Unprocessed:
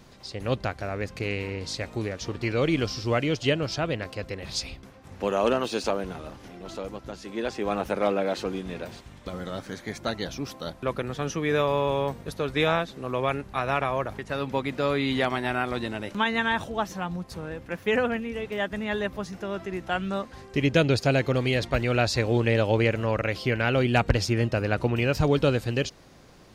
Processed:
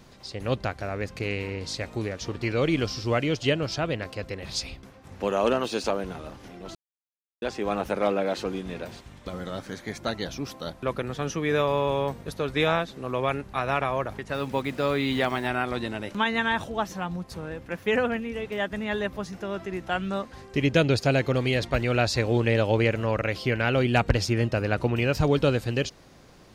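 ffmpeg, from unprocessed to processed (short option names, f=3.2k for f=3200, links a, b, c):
-filter_complex "[0:a]asettb=1/sr,asplit=3[a][b][c];[a]atrim=end=14.344[d];[b]atrim=start=14.34:end=15.48,asetpts=PTS-STARTPTS,afade=t=in:d=0.004:c=qsin,afade=t=out:st=1.136:d=0.004:c=qsin,acrusher=bits=7:mix=0:aa=0.5[e];[c]atrim=start=15.476[f];[d][e]acrossfade=d=0.004:c1=hsin:c2=qsin[g];[g][f]acrossfade=d=0.004:c1=qsin:c2=hsin,asplit=3[h][i][j];[h]atrim=end=6.75,asetpts=PTS-STARTPTS,afade=t=out:st=6.746:d=0.004:c=hsin[k];[i]atrim=start=6.75:end=7.42,asetpts=PTS-STARTPTS,volume=0[l];[j]atrim=start=7.42,asetpts=PTS-STARTPTS,afade=t=in:d=0.004:c=hsin[m];[k][l][m]concat=n=3:v=0:a=1"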